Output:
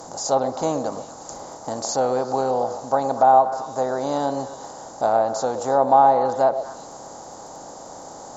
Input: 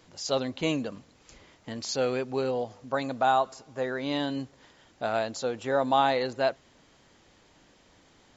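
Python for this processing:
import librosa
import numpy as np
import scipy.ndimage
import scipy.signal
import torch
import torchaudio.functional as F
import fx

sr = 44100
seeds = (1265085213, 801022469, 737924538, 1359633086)

y = fx.bin_compress(x, sr, power=0.6)
y = fx.dmg_crackle(y, sr, seeds[0], per_s=13.0, level_db=-50.0)
y = fx.curve_eq(y, sr, hz=(400.0, 830.0, 2600.0, 7100.0), db=(0, 9, -18, 11))
y = fx.echo_stepped(y, sr, ms=120, hz=510.0, octaves=1.4, feedback_pct=70, wet_db=-7.5)
y = fx.env_lowpass_down(y, sr, base_hz=2300.0, full_db=-13.5)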